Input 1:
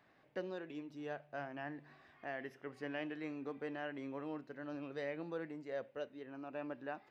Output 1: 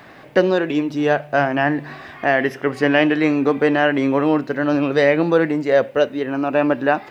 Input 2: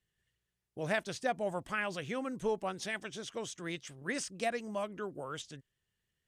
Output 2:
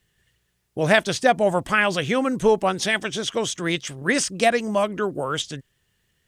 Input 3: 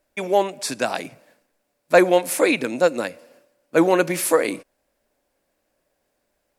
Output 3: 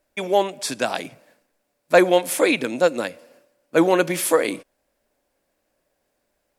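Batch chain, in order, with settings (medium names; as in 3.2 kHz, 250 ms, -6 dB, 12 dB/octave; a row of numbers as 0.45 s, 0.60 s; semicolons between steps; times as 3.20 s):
dynamic bell 3.3 kHz, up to +7 dB, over -54 dBFS, Q 6.9; peak normalisation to -1.5 dBFS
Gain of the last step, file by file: +26.5 dB, +15.5 dB, 0.0 dB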